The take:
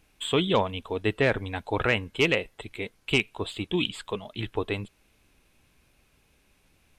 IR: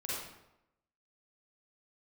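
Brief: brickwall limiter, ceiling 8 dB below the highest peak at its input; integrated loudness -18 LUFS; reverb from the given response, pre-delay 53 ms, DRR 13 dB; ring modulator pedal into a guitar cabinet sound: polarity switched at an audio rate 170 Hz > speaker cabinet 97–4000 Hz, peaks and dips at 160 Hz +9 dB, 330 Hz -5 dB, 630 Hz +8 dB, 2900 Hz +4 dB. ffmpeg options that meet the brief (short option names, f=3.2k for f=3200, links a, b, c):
-filter_complex "[0:a]alimiter=limit=-18.5dB:level=0:latency=1,asplit=2[a][b];[1:a]atrim=start_sample=2205,adelay=53[c];[b][c]afir=irnorm=-1:irlink=0,volume=-16dB[d];[a][d]amix=inputs=2:normalize=0,aeval=exprs='val(0)*sgn(sin(2*PI*170*n/s))':c=same,highpass=97,equalizer=f=160:t=q:w=4:g=9,equalizer=f=330:t=q:w=4:g=-5,equalizer=f=630:t=q:w=4:g=8,equalizer=f=2.9k:t=q:w=4:g=4,lowpass=f=4k:w=0.5412,lowpass=f=4k:w=1.3066,volume=12dB"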